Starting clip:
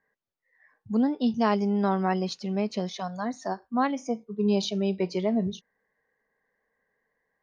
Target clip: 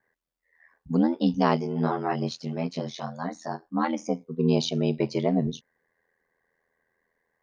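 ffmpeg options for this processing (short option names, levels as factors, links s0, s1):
-filter_complex "[0:a]asplit=3[s0][s1][s2];[s0]afade=t=out:st=1.55:d=0.02[s3];[s1]flanger=delay=18:depth=3.9:speed=1.5,afade=t=in:st=1.55:d=0.02,afade=t=out:st=3.87:d=0.02[s4];[s2]afade=t=in:st=3.87:d=0.02[s5];[s3][s4][s5]amix=inputs=3:normalize=0,aeval=exprs='val(0)*sin(2*PI*41*n/s)':c=same,volume=1.68"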